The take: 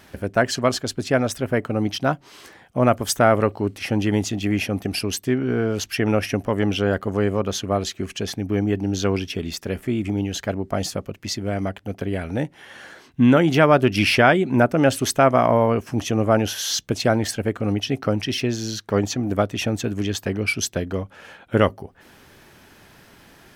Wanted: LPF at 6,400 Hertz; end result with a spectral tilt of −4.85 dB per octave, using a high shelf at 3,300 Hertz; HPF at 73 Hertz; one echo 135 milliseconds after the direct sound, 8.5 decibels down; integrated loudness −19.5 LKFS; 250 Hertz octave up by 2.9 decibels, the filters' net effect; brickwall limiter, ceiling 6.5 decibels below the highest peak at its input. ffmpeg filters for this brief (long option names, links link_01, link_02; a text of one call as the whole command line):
ffmpeg -i in.wav -af "highpass=73,lowpass=6400,equalizer=frequency=250:width_type=o:gain=3.5,highshelf=frequency=3300:gain=6,alimiter=limit=-5.5dB:level=0:latency=1,aecho=1:1:135:0.376,volume=1dB" out.wav